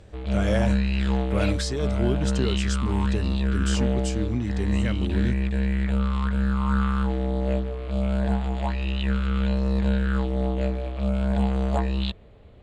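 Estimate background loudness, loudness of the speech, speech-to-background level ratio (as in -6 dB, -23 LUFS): -25.5 LUFS, -30.5 LUFS, -5.0 dB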